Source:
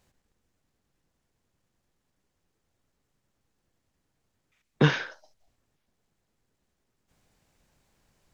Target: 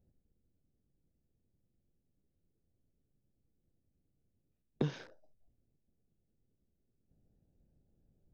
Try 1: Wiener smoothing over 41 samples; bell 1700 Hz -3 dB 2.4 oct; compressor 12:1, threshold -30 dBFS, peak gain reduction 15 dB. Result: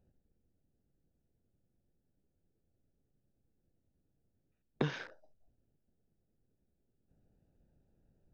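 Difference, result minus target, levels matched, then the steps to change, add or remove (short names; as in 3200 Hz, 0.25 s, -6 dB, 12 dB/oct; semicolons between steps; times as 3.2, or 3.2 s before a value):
2000 Hz band +9.0 dB
change: bell 1700 Hz -13.5 dB 2.4 oct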